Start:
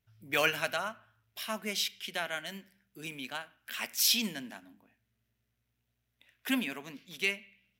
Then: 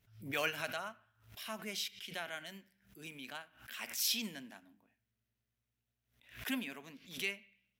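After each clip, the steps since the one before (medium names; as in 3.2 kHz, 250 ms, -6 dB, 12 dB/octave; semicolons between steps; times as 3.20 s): swell ahead of each attack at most 120 dB/s; trim -7.5 dB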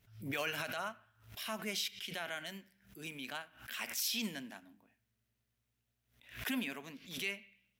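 peak limiter -29.5 dBFS, peak gain reduction 9 dB; trim +3.5 dB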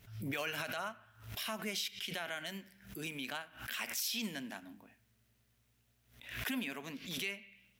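compression 2:1, threshold -53 dBFS, peak gain reduction 11 dB; trim +9.5 dB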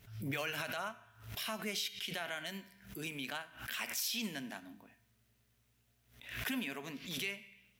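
feedback comb 140 Hz, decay 0.8 s, harmonics odd, mix 60%; trim +7.5 dB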